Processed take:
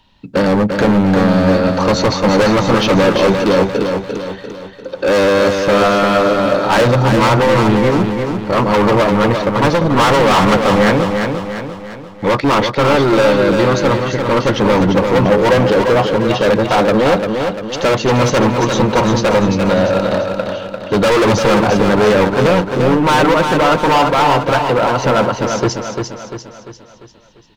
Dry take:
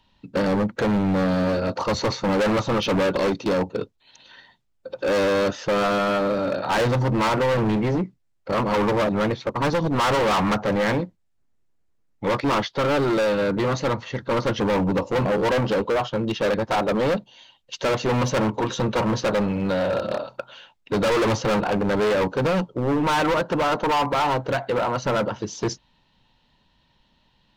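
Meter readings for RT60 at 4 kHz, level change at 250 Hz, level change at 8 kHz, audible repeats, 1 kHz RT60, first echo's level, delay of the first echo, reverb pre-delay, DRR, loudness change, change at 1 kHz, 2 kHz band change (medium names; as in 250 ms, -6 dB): no reverb, +10.0 dB, +10.0 dB, 5, no reverb, -5.5 dB, 346 ms, no reverb, no reverb, +9.5 dB, +10.0 dB, +10.0 dB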